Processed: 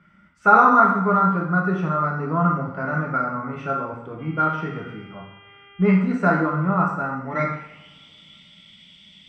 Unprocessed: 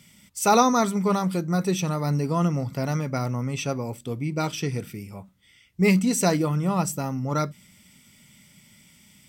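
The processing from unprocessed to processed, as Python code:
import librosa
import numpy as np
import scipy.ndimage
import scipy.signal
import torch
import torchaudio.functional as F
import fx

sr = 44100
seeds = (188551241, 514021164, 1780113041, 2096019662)

y = fx.filter_sweep_lowpass(x, sr, from_hz=1400.0, to_hz=3400.0, start_s=6.98, end_s=7.99, q=7.6)
y = fx.dmg_buzz(y, sr, base_hz=400.0, harmonics=8, level_db=-49.0, tilt_db=0, odd_only=False, at=(4.18, 5.95), fade=0.02)
y = fx.rev_double_slope(y, sr, seeds[0], early_s=0.74, late_s=2.9, knee_db=-26, drr_db=-1.5)
y = y * librosa.db_to_amplitude(-4.5)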